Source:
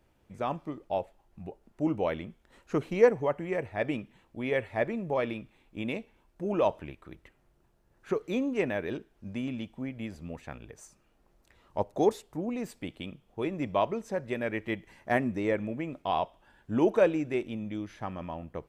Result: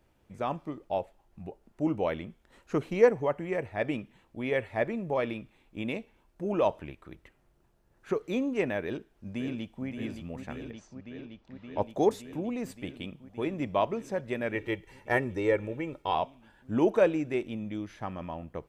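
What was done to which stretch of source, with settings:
0:08.82–0:09.86: delay throw 570 ms, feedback 85%, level −7.5 dB
0:10.71–0:11.82: low-pass filter 5,300 Hz 24 dB per octave
0:14.55–0:16.15: comb filter 2.2 ms, depth 62%

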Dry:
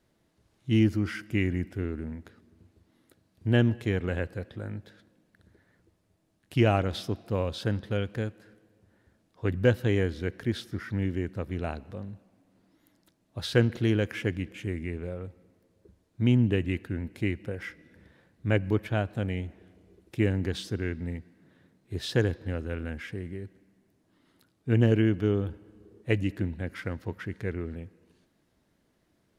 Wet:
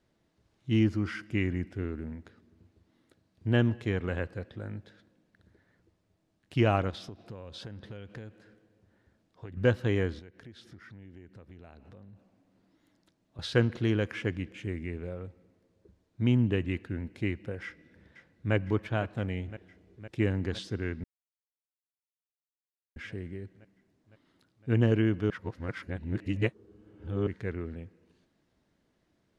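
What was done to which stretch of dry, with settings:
0:06.90–0:09.57: downward compressor 8 to 1, threshold −36 dBFS
0:10.19–0:13.39: downward compressor 4 to 1, threshold −46 dBFS
0:17.64–0:18.54: delay throw 510 ms, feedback 80%, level −13 dB
0:21.04–0:22.96: silence
0:25.30–0:27.27: reverse
whole clip: dynamic equaliser 1,100 Hz, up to +5 dB, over −48 dBFS, Q 2.4; low-pass filter 7,300 Hz 12 dB per octave; level −2.5 dB

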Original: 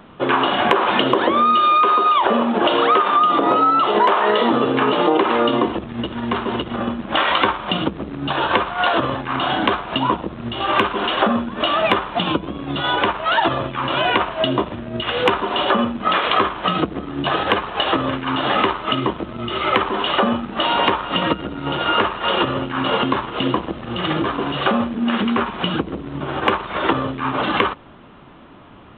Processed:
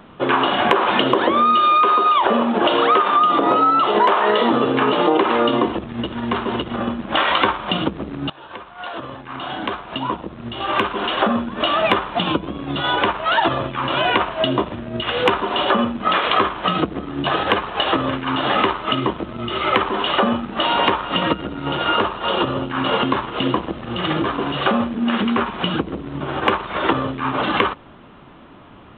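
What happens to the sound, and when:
0:08.30–0:11.58: fade in, from −24 dB
0:21.96–0:22.71: parametric band 2,000 Hz −5.5 dB 0.96 octaves

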